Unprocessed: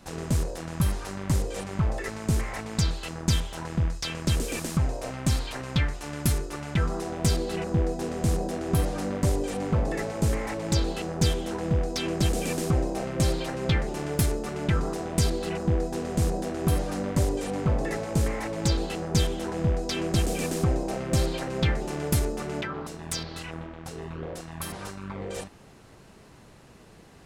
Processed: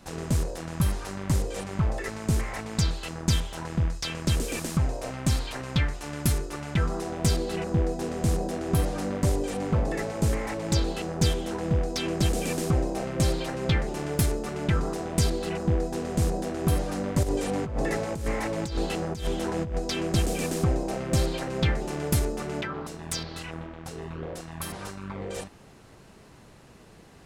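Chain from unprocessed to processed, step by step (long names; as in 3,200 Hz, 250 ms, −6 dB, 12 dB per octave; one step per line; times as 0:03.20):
0:17.23–0:19.79: compressor whose output falls as the input rises −26 dBFS, ratio −0.5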